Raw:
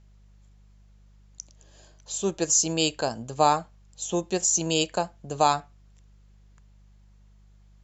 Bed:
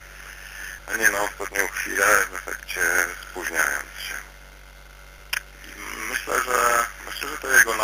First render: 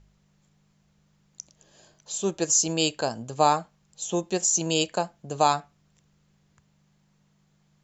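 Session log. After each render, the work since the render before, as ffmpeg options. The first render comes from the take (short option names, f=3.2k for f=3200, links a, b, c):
-af "bandreject=f=50:t=h:w=4,bandreject=f=100:t=h:w=4"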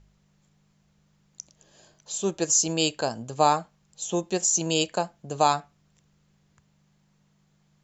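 -af anull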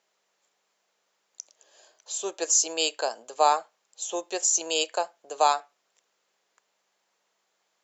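-af "highpass=f=440:w=0.5412,highpass=f=440:w=1.3066"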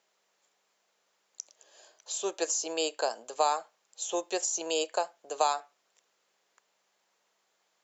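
-filter_complex "[0:a]acrossover=split=1400|5200[a][b][c];[a]acompressor=threshold=-24dB:ratio=4[d];[b]acompressor=threshold=-36dB:ratio=4[e];[c]acompressor=threshold=-36dB:ratio=4[f];[d][e][f]amix=inputs=3:normalize=0"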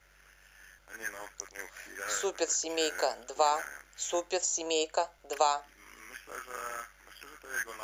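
-filter_complex "[1:a]volume=-20dB[a];[0:a][a]amix=inputs=2:normalize=0"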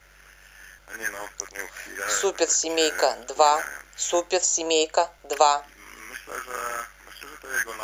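-af "volume=8.5dB"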